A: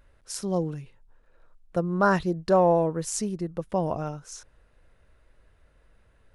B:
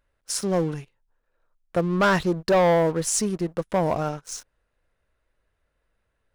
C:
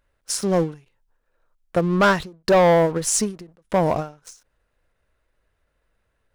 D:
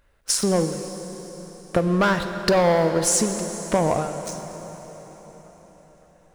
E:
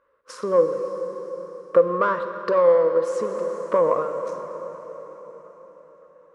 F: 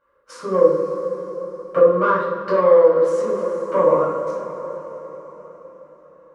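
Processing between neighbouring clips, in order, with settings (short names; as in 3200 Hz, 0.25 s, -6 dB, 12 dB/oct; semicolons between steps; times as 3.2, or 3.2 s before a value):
low shelf 320 Hz -5.5 dB; sample leveller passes 3; gain -3.5 dB
ending taper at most 170 dB/s; gain +3.5 dB
compressor 4:1, threshold -26 dBFS, peak gain reduction 11 dB; plate-style reverb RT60 4.8 s, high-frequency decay 0.85×, DRR 7 dB; gain +7 dB
vocal rider within 3 dB 0.5 s; double band-pass 750 Hz, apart 1.1 oct; gain +8.5 dB
shoebox room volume 850 m³, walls furnished, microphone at 7.6 m; gain -6.5 dB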